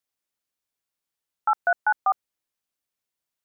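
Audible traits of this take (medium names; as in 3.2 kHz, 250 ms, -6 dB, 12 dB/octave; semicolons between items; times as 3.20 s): noise floor -87 dBFS; spectral tilt +0.5 dB/octave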